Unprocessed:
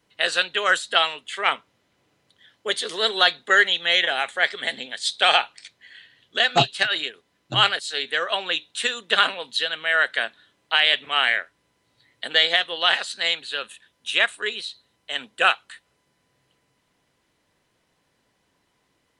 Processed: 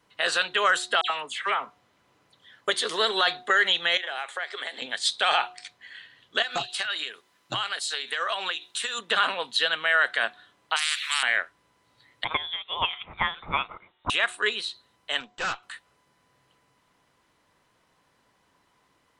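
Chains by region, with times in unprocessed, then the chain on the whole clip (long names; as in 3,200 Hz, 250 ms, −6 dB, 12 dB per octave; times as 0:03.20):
0:01.01–0:02.68: downward compressor 3 to 1, threshold −26 dBFS + all-pass dispersion lows, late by 91 ms, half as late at 2,500 Hz
0:03.97–0:04.82: high-pass filter 320 Hz 24 dB per octave + downward compressor, threshold −31 dBFS
0:06.42–0:08.99: spectral tilt +2 dB per octave + downward compressor 16 to 1, threshold −26 dBFS
0:10.76–0:11.23: inverse Chebyshev high-pass filter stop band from 520 Hz, stop band 70 dB + every bin compressed towards the loudest bin 4 to 1
0:12.24–0:14.10: high-pass filter 250 Hz 6 dB per octave + treble cut that deepens with the level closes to 540 Hz, closed at −16.5 dBFS + voice inversion scrambler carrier 3,900 Hz
0:15.20–0:15.63: tube saturation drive 29 dB, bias 0.75 + linear-phase brick-wall low-pass 8,200 Hz
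whole clip: parametric band 1,100 Hz +7 dB 1 octave; hum removal 363.1 Hz, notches 2; brickwall limiter −11.5 dBFS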